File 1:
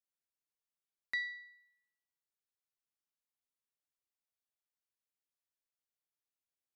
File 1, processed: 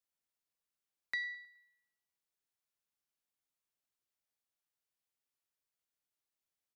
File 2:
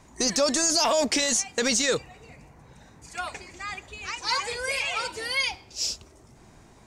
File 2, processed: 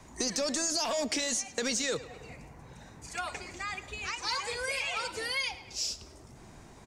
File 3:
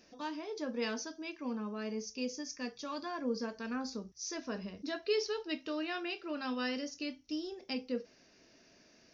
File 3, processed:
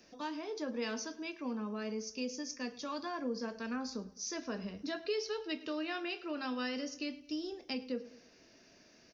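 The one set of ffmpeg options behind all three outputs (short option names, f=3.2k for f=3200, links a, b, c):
-filter_complex "[0:a]acrossover=split=170|470|2500[a][b][c][d];[c]asoftclip=type=hard:threshold=-25dB[e];[a][b][e][d]amix=inputs=4:normalize=0,asplit=2[f][g];[g]adelay=105,lowpass=f=4.4k:p=1,volume=-18dB,asplit=2[h][i];[i]adelay=105,lowpass=f=4.4k:p=1,volume=0.43,asplit=2[j][k];[k]adelay=105,lowpass=f=4.4k:p=1,volume=0.43,asplit=2[l][m];[m]adelay=105,lowpass=f=4.4k:p=1,volume=0.43[n];[f][h][j][l][n]amix=inputs=5:normalize=0,acompressor=threshold=-36dB:ratio=2,volume=1dB"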